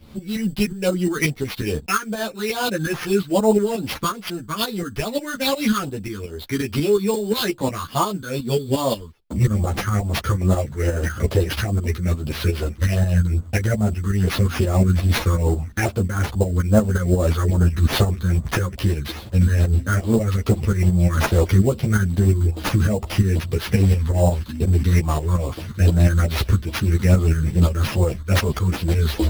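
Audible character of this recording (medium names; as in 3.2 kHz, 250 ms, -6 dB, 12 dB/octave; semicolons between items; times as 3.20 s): tremolo saw up 5.6 Hz, depth 65%; phasing stages 6, 2.4 Hz, lowest notch 650–2500 Hz; aliases and images of a low sample rate 7.9 kHz, jitter 0%; a shimmering, thickened sound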